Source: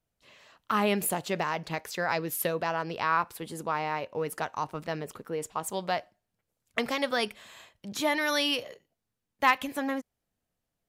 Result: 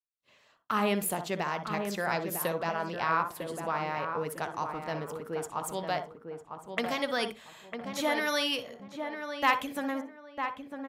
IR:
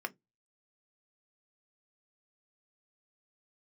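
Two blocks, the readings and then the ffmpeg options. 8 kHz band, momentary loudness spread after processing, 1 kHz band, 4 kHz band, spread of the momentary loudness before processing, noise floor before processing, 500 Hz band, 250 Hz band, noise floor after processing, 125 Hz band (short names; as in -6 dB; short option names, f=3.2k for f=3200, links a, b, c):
-2.5 dB, 10 LU, -1.0 dB, -2.0 dB, 11 LU, -85 dBFS, -1.0 dB, -1.0 dB, -64 dBFS, -1.0 dB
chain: -filter_complex "[0:a]agate=range=-33dB:threshold=-51dB:ratio=3:detection=peak,asplit=2[a][b];[b]adelay=952,lowpass=f=1.5k:p=1,volume=-6dB,asplit=2[c][d];[d]adelay=952,lowpass=f=1.5k:p=1,volume=0.28,asplit=2[e][f];[f]adelay=952,lowpass=f=1.5k:p=1,volume=0.28,asplit=2[g][h];[h]adelay=952,lowpass=f=1.5k:p=1,volume=0.28[i];[a][c][e][g][i]amix=inputs=5:normalize=0,asplit=2[j][k];[1:a]atrim=start_sample=2205,asetrate=27342,aresample=44100,adelay=60[l];[k][l]afir=irnorm=-1:irlink=0,volume=-14dB[m];[j][m]amix=inputs=2:normalize=0,volume=-2.5dB"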